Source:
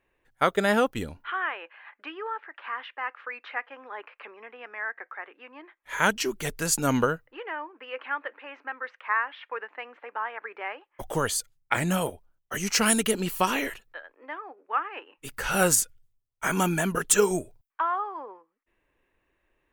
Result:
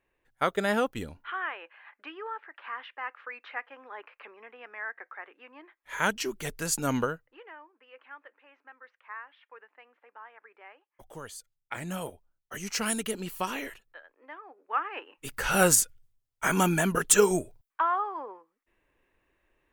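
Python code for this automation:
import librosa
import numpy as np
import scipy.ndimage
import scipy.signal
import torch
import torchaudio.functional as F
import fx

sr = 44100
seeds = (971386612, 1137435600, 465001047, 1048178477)

y = fx.gain(x, sr, db=fx.line((6.98, -4.0), (7.71, -16.0), (11.37, -16.0), (12.1, -7.5), (14.42, -7.5), (14.91, 0.5)))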